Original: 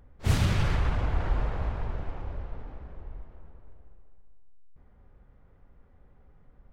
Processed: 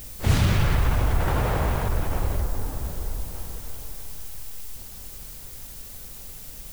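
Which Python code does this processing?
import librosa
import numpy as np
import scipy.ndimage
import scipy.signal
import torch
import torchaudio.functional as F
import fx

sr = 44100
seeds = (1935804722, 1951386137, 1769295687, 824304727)

p1 = fx.highpass(x, sr, hz=110.0, slope=6, at=(1.27, 1.88))
p2 = fx.echo_diffused(p1, sr, ms=559, feedback_pct=55, wet_db=-15.0)
p3 = fx.over_compress(p2, sr, threshold_db=-33.0, ratio=-1.0)
p4 = p2 + (p3 * 10.0 ** (0.0 / 20.0))
p5 = fx.air_absorb(p4, sr, metres=460.0, at=(2.41, 3.34))
p6 = fx.dmg_noise_colour(p5, sr, seeds[0], colour='blue', level_db=-45.0)
y = p6 * 10.0 ** (3.0 / 20.0)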